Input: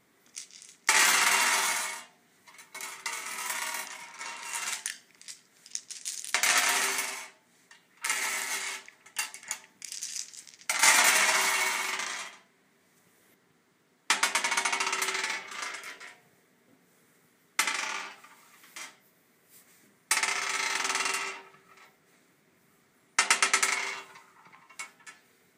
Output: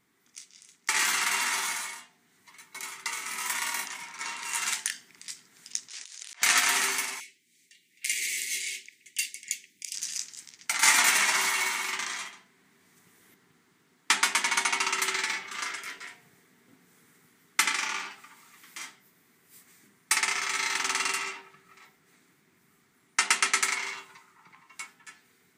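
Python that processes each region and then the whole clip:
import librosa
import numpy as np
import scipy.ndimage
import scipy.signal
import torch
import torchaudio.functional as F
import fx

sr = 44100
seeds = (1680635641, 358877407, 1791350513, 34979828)

y = fx.chain(x, sr, fx.highpass(hz=520.0, slope=12),
    fx.over_compress(threshold_db=-45.0, ratio=-1.0),
    fx.air_absorb(metres=67.0), at=(5.88, 6.42))
y = fx.chain(y, sr, fx.ellip_bandstop(low_hz=370.0, high_hz=2200.0, order=3, stop_db=50),
    fx.low_shelf(hz=440.0, db=-11.5), at=(7.2, 9.95))
y = fx.peak_eq(y, sr, hz=580.0, db=-10.5, octaves=0.56)
y = fx.rider(y, sr, range_db=4, speed_s=2.0)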